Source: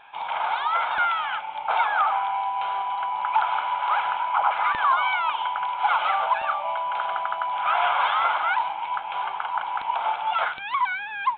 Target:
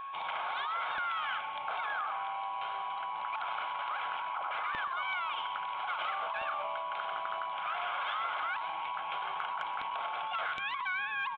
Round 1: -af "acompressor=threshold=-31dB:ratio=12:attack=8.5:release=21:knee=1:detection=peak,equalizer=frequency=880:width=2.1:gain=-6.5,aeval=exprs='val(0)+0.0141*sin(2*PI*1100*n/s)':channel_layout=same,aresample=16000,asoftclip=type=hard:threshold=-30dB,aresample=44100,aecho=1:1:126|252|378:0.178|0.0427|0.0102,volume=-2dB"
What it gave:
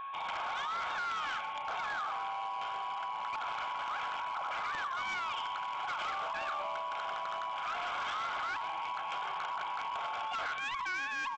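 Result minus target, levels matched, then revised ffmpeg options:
hard clipping: distortion +34 dB
-af "acompressor=threshold=-31dB:ratio=12:attack=8.5:release=21:knee=1:detection=peak,equalizer=frequency=880:width=2.1:gain=-6.5,aeval=exprs='val(0)+0.0141*sin(2*PI*1100*n/s)':channel_layout=same,aresample=16000,asoftclip=type=hard:threshold=-19.5dB,aresample=44100,aecho=1:1:126|252|378:0.178|0.0427|0.0102,volume=-2dB"

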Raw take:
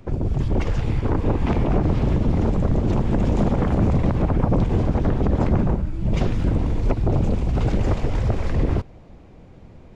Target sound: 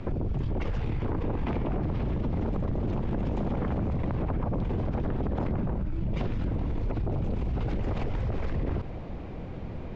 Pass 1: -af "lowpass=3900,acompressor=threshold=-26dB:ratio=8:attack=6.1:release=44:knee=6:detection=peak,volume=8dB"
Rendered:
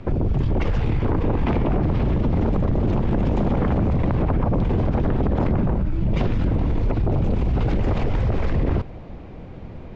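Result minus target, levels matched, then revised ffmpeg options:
downward compressor: peak gain reduction −9 dB
-af "lowpass=3900,acompressor=threshold=-36dB:ratio=8:attack=6.1:release=44:knee=6:detection=peak,volume=8dB"

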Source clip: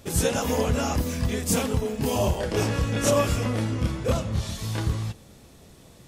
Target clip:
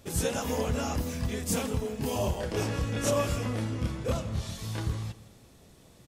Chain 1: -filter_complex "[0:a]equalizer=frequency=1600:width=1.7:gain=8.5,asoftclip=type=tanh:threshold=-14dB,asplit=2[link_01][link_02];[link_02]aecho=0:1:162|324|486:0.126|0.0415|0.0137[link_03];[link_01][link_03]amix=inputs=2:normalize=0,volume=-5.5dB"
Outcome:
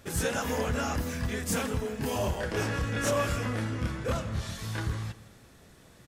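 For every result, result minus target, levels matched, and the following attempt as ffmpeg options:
soft clipping: distortion +18 dB; 2,000 Hz band +5.5 dB
-filter_complex "[0:a]equalizer=frequency=1600:width=1.7:gain=8.5,asoftclip=type=tanh:threshold=-4.5dB,asplit=2[link_01][link_02];[link_02]aecho=0:1:162|324|486:0.126|0.0415|0.0137[link_03];[link_01][link_03]amix=inputs=2:normalize=0,volume=-5.5dB"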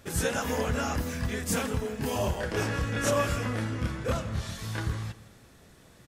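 2,000 Hz band +5.5 dB
-filter_complex "[0:a]asoftclip=type=tanh:threshold=-4.5dB,asplit=2[link_01][link_02];[link_02]aecho=0:1:162|324|486:0.126|0.0415|0.0137[link_03];[link_01][link_03]amix=inputs=2:normalize=0,volume=-5.5dB"

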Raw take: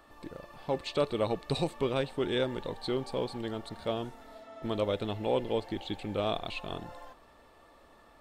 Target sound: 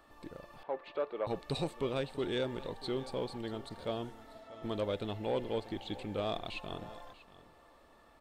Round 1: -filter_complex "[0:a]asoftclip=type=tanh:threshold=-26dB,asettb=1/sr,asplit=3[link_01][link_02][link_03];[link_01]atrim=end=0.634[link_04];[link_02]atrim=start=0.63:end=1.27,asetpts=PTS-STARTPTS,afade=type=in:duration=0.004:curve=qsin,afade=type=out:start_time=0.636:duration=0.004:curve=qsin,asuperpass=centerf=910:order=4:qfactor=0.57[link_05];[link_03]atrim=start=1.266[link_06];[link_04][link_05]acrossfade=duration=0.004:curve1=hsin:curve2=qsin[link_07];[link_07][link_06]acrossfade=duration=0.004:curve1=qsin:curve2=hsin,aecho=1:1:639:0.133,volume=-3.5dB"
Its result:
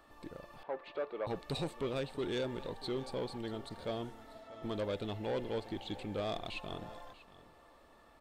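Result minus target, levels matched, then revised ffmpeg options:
soft clipping: distortion +9 dB
-filter_complex "[0:a]asoftclip=type=tanh:threshold=-19.5dB,asettb=1/sr,asplit=3[link_01][link_02][link_03];[link_01]atrim=end=0.634[link_04];[link_02]atrim=start=0.63:end=1.27,asetpts=PTS-STARTPTS,afade=type=in:duration=0.004:curve=qsin,afade=type=out:start_time=0.636:duration=0.004:curve=qsin,asuperpass=centerf=910:order=4:qfactor=0.57[link_05];[link_03]atrim=start=1.266[link_06];[link_04][link_05]acrossfade=duration=0.004:curve1=hsin:curve2=qsin[link_07];[link_07][link_06]acrossfade=duration=0.004:curve1=qsin:curve2=hsin,aecho=1:1:639:0.133,volume=-3.5dB"

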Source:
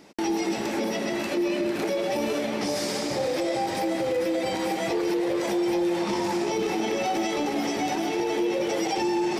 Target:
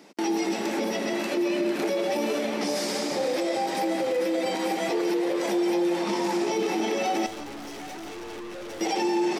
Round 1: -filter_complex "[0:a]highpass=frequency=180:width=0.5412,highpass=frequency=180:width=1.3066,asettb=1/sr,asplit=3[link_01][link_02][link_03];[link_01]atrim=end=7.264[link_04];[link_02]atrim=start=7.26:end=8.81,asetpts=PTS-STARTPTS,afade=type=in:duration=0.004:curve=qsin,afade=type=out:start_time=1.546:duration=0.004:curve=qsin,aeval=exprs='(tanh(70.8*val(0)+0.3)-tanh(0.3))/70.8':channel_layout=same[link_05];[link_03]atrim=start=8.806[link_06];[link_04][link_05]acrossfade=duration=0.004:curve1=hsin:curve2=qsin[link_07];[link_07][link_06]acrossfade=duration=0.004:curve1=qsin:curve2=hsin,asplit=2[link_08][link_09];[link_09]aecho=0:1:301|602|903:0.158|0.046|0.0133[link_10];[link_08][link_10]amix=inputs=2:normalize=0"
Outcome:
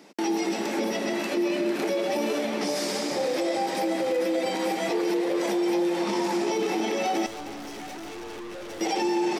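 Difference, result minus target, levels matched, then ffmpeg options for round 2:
echo 129 ms late
-filter_complex "[0:a]highpass=frequency=180:width=0.5412,highpass=frequency=180:width=1.3066,asettb=1/sr,asplit=3[link_01][link_02][link_03];[link_01]atrim=end=7.264[link_04];[link_02]atrim=start=7.26:end=8.81,asetpts=PTS-STARTPTS,afade=type=in:duration=0.004:curve=qsin,afade=type=out:start_time=1.546:duration=0.004:curve=qsin,aeval=exprs='(tanh(70.8*val(0)+0.3)-tanh(0.3))/70.8':channel_layout=same[link_05];[link_03]atrim=start=8.806[link_06];[link_04][link_05]acrossfade=duration=0.004:curve1=hsin:curve2=qsin[link_07];[link_07][link_06]acrossfade=duration=0.004:curve1=qsin:curve2=hsin,asplit=2[link_08][link_09];[link_09]aecho=0:1:172|344|516:0.158|0.046|0.0133[link_10];[link_08][link_10]amix=inputs=2:normalize=0"

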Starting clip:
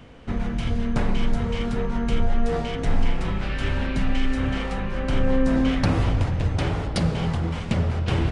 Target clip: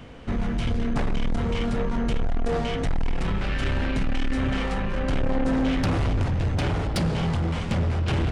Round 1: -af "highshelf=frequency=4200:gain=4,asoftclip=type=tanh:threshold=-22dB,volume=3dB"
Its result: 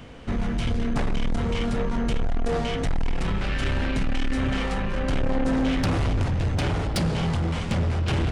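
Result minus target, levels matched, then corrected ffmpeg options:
8,000 Hz band +2.5 dB
-af "asoftclip=type=tanh:threshold=-22dB,volume=3dB"

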